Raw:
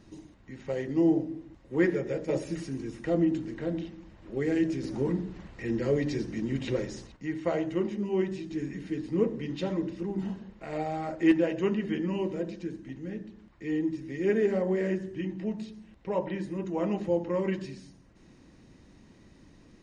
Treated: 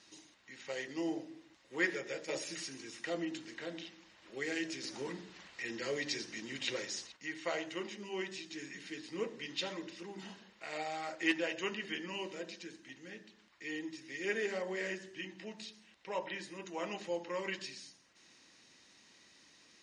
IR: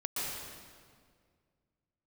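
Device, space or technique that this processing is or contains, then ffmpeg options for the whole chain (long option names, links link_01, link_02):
piezo pickup straight into a mixer: -af "lowpass=5300,aderivative,volume=13dB"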